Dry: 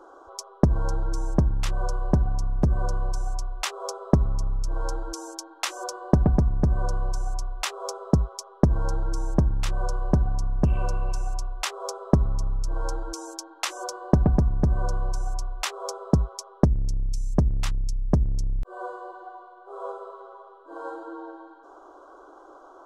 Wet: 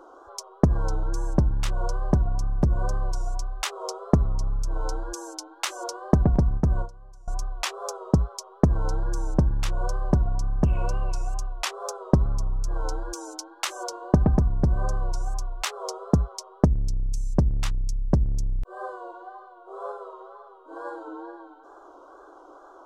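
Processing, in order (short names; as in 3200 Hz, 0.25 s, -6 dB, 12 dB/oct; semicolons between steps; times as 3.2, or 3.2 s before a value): wow and flutter 75 cents; 6.35–7.28 gate with hold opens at -17 dBFS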